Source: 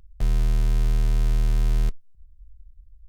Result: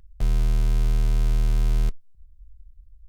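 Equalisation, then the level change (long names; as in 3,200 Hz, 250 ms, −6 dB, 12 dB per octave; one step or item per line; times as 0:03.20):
notch filter 1,800 Hz, Q 20
0.0 dB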